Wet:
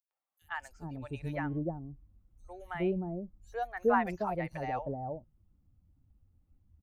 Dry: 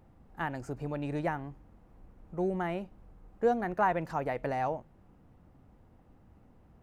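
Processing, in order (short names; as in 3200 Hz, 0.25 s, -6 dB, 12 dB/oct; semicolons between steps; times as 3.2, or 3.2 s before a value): per-bin expansion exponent 1.5; three bands offset in time highs, mids, lows 0.11/0.42 s, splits 670/5100 Hz; gain +2 dB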